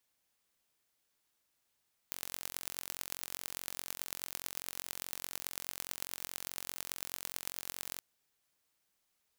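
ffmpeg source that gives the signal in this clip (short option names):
-f lavfi -i "aevalsrc='0.335*eq(mod(n,984),0)*(0.5+0.5*eq(mod(n,4920),0))':d=5.89:s=44100"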